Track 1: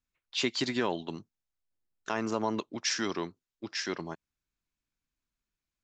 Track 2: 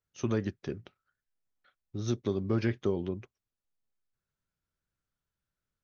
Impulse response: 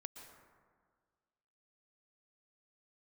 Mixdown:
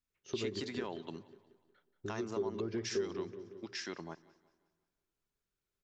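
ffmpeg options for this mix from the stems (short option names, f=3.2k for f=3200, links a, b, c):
-filter_complex "[0:a]volume=-4.5dB,asplit=3[a][b][c];[b]volume=-18dB[d];[c]volume=-24dB[e];[1:a]equalizer=f=400:w=3.5:g=14.5,bandreject=f=2.5k:w=12,adelay=100,volume=-5.5dB,asplit=2[f][g];[g]volume=-13dB[h];[2:a]atrim=start_sample=2205[i];[d][i]afir=irnorm=-1:irlink=0[j];[e][h]amix=inputs=2:normalize=0,aecho=0:1:181|362|543|724|905|1086:1|0.41|0.168|0.0689|0.0283|0.0116[k];[a][f][j][k]amix=inputs=4:normalize=0,bandreject=f=60:t=h:w=6,bandreject=f=120:t=h:w=6,acompressor=threshold=-41dB:ratio=2"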